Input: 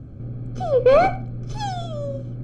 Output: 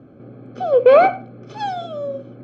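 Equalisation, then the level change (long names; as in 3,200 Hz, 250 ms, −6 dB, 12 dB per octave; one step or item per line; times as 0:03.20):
band-pass filter 310–3,100 Hz
+4.5 dB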